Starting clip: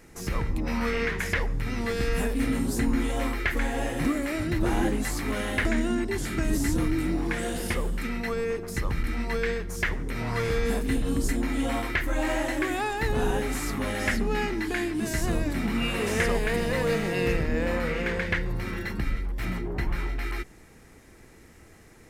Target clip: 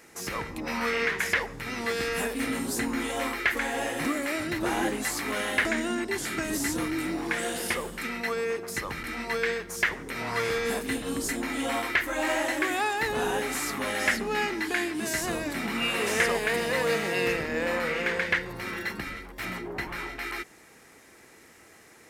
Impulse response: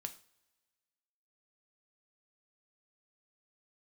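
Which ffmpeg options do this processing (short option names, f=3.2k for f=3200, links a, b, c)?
-af "highpass=f=580:p=1,volume=3.5dB"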